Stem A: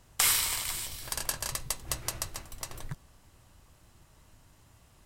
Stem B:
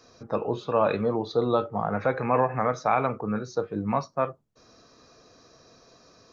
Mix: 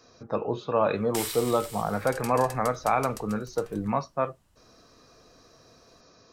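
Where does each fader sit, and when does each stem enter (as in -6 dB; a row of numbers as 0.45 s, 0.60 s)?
-8.5 dB, -1.0 dB; 0.95 s, 0.00 s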